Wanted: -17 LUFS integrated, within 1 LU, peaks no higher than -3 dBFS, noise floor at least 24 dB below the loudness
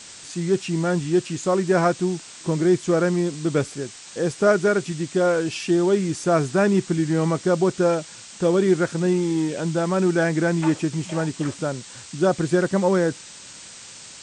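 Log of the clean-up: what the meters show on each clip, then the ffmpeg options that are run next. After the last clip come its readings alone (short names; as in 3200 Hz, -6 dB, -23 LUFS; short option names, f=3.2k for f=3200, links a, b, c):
noise floor -42 dBFS; noise floor target -46 dBFS; loudness -22.0 LUFS; peak -6.5 dBFS; loudness target -17.0 LUFS
-> -af "afftdn=nr=6:nf=-42"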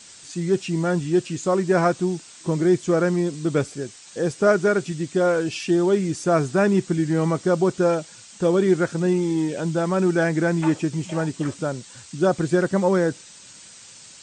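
noise floor -46 dBFS; loudness -22.0 LUFS; peak -6.5 dBFS; loudness target -17.0 LUFS
-> -af "volume=5dB,alimiter=limit=-3dB:level=0:latency=1"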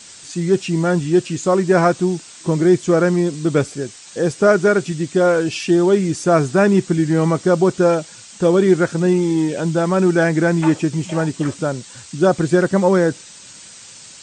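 loudness -17.0 LUFS; peak -3.0 dBFS; noise floor -41 dBFS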